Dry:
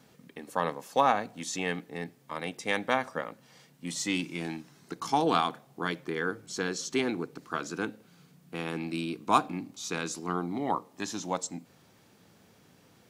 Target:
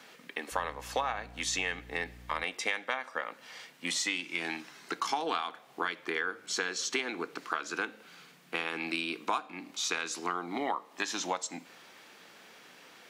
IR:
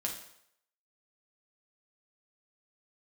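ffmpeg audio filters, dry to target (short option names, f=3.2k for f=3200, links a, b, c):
-filter_complex "[0:a]highpass=300,equalizer=f=2.2k:t=o:w=2.6:g=11,acompressor=threshold=-31dB:ratio=8,asettb=1/sr,asplit=3[a][b][c];[a]atrim=end=0.524[d];[b]atrim=start=0.52:end=2.44,asetpts=PTS-STARTPTS,afade=t=in:d=0.004:c=qsin,afade=t=out:st=1.916:d=0.004:c=qsin,aeval=exprs='val(0)+0.00251*(sin(2*PI*60*n/s)+sin(2*PI*2*60*n/s)/2+sin(2*PI*3*60*n/s)/3+sin(2*PI*4*60*n/s)/4+sin(2*PI*5*60*n/s)/5)':c=same[e];[c]atrim=start=2.436[f];[d][e]acrossfade=d=0.004:c1=hsin:c2=qsin[g];[g][f]acrossfade=d=0.004:c1=qsin:c2=hsin,asplit=2[h][i];[1:a]atrim=start_sample=2205,adelay=17[j];[i][j]afir=irnorm=-1:irlink=0,volume=-20dB[k];[h][k]amix=inputs=2:normalize=0,volume=2dB"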